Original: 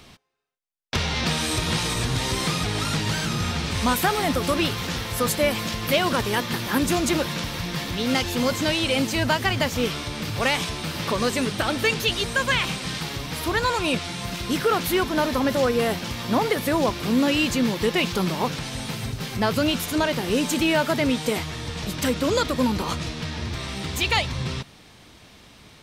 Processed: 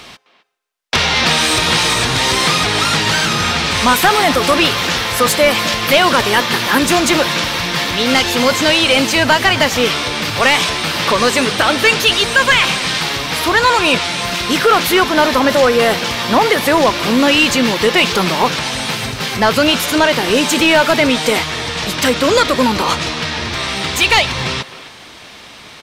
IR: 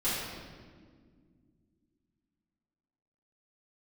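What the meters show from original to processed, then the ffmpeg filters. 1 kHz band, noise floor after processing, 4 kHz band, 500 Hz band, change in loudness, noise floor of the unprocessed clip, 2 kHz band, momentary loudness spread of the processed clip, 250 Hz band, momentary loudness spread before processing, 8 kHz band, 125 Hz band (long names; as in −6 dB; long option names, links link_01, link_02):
+12.0 dB, −37 dBFS, +12.5 dB, +10.0 dB, +11.0 dB, −50 dBFS, +13.0 dB, 7 LU, +6.5 dB, 8 LU, +10.5 dB, +3.5 dB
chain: -filter_complex "[0:a]asplit=2[link_01][link_02];[link_02]highpass=frequency=720:poles=1,volume=14dB,asoftclip=type=tanh:threshold=-7.5dB[link_03];[link_01][link_03]amix=inputs=2:normalize=0,lowpass=frequency=5300:poles=1,volume=-6dB,asplit=2[link_04][link_05];[link_05]adelay=260,highpass=300,lowpass=3400,asoftclip=type=hard:threshold=-18dB,volume=-14dB[link_06];[link_04][link_06]amix=inputs=2:normalize=0,volume=6.5dB"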